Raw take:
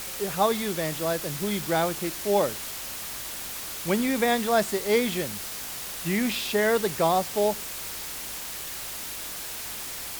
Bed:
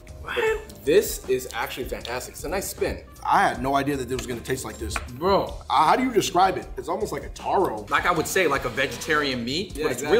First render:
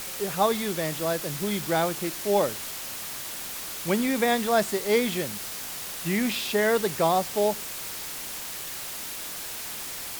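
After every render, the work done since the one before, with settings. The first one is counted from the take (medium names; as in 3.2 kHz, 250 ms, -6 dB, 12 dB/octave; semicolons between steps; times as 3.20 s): de-hum 50 Hz, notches 2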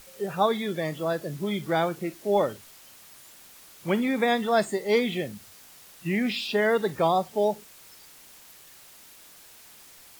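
noise print and reduce 15 dB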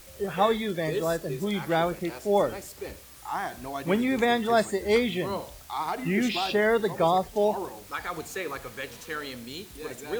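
add bed -12.5 dB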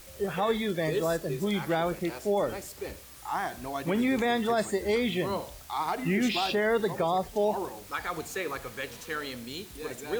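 peak limiter -17.5 dBFS, peak gain reduction 7.5 dB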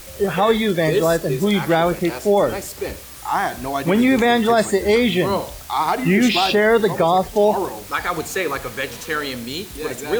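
trim +11 dB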